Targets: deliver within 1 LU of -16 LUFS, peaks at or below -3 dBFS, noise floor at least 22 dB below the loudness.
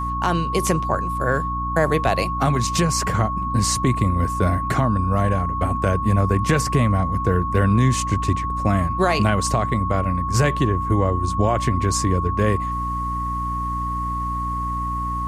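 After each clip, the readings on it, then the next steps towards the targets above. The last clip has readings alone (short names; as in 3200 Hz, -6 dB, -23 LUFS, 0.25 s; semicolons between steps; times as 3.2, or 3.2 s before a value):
hum 60 Hz; harmonics up to 300 Hz; hum level -26 dBFS; steady tone 1100 Hz; tone level -24 dBFS; loudness -21.0 LUFS; peak -6.0 dBFS; loudness target -16.0 LUFS
-> de-hum 60 Hz, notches 5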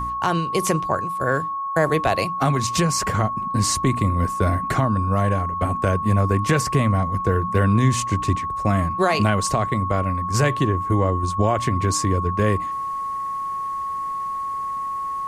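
hum none; steady tone 1100 Hz; tone level -24 dBFS
-> notch 1100 Hz, Q 30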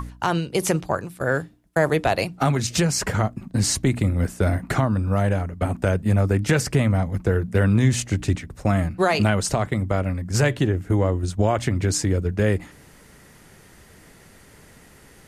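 steady tone none; loudness -22.5 LUFS; peak -6.0 dBFS; loudness target -16.0 LUFS
-> gain +6.5 dB; limiter -3 dBFS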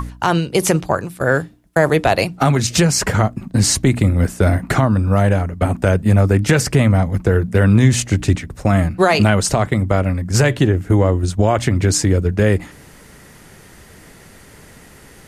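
loudness -16.0 LUFS; peak -3.0 dBFS; noise floor -44 dBFS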